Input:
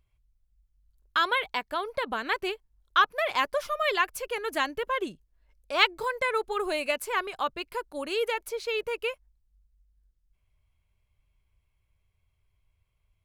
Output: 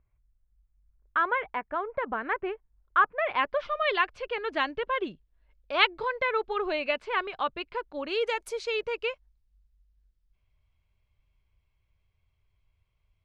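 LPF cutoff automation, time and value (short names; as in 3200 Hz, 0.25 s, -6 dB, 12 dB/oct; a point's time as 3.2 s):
LPF 24 dB/oct
3.01 s 2000 Hz
3.72 s 3900 Hz
8.05 s 3900 Hz
8.48 s 10000 Hz
8.81 s 5400 Hz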